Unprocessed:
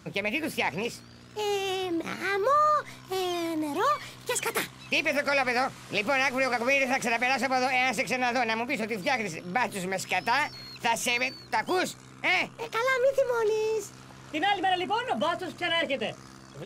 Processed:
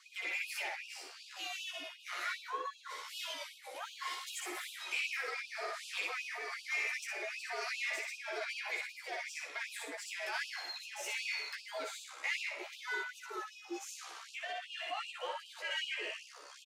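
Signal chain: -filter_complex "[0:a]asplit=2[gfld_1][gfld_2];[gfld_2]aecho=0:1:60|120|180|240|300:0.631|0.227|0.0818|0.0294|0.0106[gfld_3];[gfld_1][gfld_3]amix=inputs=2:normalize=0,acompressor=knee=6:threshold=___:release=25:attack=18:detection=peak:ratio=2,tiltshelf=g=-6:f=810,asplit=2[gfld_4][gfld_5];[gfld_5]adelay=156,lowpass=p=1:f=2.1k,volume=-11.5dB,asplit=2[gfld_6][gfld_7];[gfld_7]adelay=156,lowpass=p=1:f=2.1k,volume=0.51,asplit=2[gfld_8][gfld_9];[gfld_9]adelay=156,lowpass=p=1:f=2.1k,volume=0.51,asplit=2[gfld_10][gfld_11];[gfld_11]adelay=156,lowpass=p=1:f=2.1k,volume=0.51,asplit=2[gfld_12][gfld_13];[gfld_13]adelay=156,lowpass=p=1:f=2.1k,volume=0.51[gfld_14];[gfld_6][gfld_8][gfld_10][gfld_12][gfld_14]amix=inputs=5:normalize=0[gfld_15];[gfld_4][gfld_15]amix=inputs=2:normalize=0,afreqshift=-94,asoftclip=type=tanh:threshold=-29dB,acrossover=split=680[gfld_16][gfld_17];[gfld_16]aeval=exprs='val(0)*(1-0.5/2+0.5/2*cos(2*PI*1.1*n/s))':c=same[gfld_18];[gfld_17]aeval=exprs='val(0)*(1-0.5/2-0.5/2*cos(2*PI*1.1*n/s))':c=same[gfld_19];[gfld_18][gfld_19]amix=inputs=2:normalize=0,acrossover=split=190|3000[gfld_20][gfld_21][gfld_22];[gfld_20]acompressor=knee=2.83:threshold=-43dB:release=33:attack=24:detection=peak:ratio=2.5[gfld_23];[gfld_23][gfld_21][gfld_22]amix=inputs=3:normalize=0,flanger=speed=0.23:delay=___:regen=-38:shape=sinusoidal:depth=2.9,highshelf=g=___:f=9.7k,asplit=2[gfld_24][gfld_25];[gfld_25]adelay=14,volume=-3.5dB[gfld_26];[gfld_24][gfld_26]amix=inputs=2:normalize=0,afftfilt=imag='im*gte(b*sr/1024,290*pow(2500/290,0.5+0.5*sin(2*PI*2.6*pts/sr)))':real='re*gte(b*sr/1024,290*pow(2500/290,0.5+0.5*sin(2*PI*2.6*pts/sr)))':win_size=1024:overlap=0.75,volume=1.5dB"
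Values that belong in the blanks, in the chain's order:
-45dB, 2.8, -9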